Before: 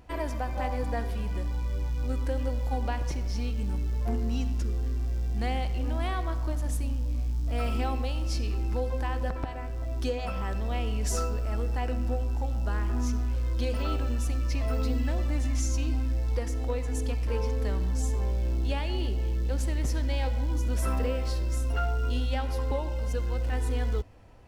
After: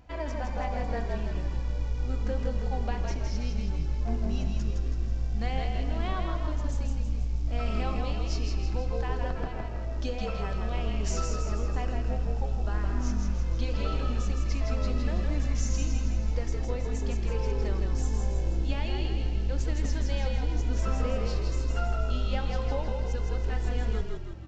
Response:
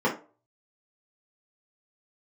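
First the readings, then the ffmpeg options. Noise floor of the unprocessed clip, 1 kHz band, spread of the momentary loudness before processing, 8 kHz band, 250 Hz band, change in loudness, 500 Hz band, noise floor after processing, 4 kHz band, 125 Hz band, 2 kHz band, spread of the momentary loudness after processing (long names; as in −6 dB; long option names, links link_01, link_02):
−32 dBFS, −1.5 dB, 3 LU, −2.5 dB, −1.0 dB, −1.0 dB, −1.0 dB, −32 dBFS, −0.5 dB, −1.0 dB, −1.0 dB, 3 LU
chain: -filter_complex "[0:a]flanger=delay=1.3:depth=4.3:regen=-69:speed=0.57:shape=sinusoidal,asplit=8[link_01][link_02][link_03][link_04][link_05][link_06][link_07][link_08];[link_02]adelay=162,afreqshift=-43,volume=-4dB[link_09];[link_03]adelay=324,afreqshift=-86,volume=-9.7dB[link_10];[link_04]adelay=486,afreqshift=-129,volume=-15.4dB[link_11];[link_05]adelay=648,afreqshift=-172,volume=-21dB[link_12];[link_06]adelay=810,afreqshift=-215,volume=-26.7dB[link_13];[link_07]adelay=972,afreqshift=-258,volume=-32.4dB[link_14];[link_08]adelay=1134,afreqshift=-301,volume=-38.1dB[link_15];[link_01][link_09][link_10][link_11][link_12][link_13][link_14][link_15]amix=inputs=8:normalize=0,asplit=2[link_16][link_17];[1:a]atrim=start_sample=2205[link_18];[link_17][link_18]afir=irnorm=-1:irlink=0,volume=-31.5dB[link_19];[link_16][link_19]amix=inputs=2:normalize=0,aresample=16000,aresample=44100,volume=2dB"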